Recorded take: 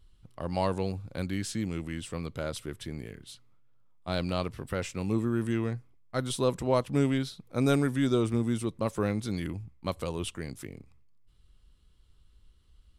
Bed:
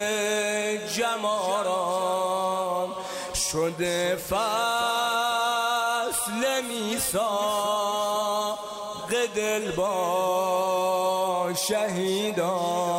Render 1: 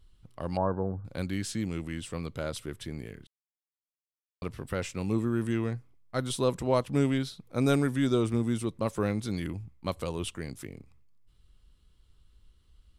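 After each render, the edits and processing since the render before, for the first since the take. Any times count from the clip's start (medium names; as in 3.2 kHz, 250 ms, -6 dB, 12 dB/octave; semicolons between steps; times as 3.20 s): 0.57–1.05 s: brick-wall FIR low-pass 1.7 kHz; 3.27–4.42 s: mute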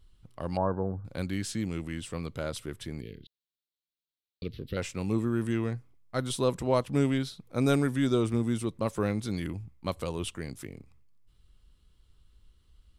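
3.01–4.77 s: FFT filter 470 Hz 0 dB, 890 Hz -25 dB, 4 kHz +9 dB, 8.5 kHz -24 dB, 12 kHz -3 dB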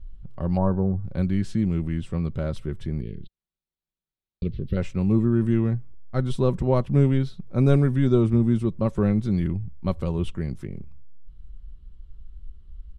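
RIAA curve playback; comb 5.3 ms, depth 36%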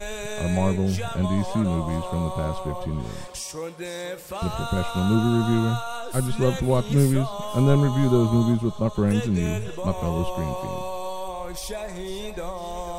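add bed -7.5 dB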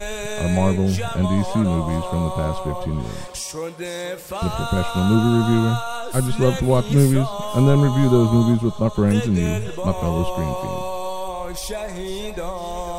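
trim +4 dB; peak limiter -3 dBFS, peak gain reduction 2 dB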